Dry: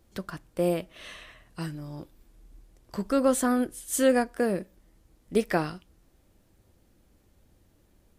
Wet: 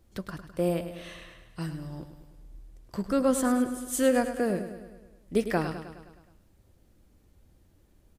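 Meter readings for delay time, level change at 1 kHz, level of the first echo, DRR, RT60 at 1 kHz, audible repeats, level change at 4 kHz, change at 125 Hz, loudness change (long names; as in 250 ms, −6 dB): 104 ms, −1.5 dB, −10.5 dB, no reverb audible, no reverb audible, 6, −2.0 dB, +1.0 dB, −1.5 dB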